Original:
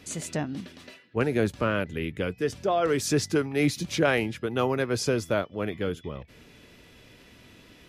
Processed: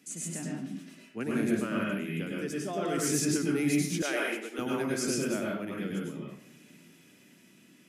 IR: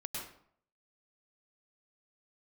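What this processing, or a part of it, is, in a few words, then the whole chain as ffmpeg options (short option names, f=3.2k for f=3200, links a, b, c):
far laptop microphone: -filter_complex "[1:a]atrim=start_sample=2205[a];[0:a][a]afir=irnorm=-1:irlink=0,highpass=f=180:w=0.5412,highpass=f=180:w=1.3066,dynaudnorm=f=270:g=9:m=3dB,asettb=1/sr,asplit=3[b][c][d];[b]atrim=end=4.024[e];[c]atrim=start=4.02:end=4.59,asetpts=PTS-STARTPTS,afade=t=in:d=0.004:c=qsin,afade=t=out:st=0.566:d=0.004:c=qsin,highpass=f=350:w=0.5412,highpass=f=350:w=1.3066[f];[d]atrim=start=4.586[g];[e][f]acrossfade=d=0.004:c1=hsin:c2=qsin[h];[h][g]acrossfade=d=0.004:c1=qsin:c2=hsin,equalizer=f=500:t=o:w=1:g=-11,equalizer=f=1k:t=o:w=1:g=-10,equalizer=f=2k:t=o:w=1:g=-3,equalizer=f=4k:t=o:w=1:g=-10,equalizer=f=8k:t=o:w=1:g=4"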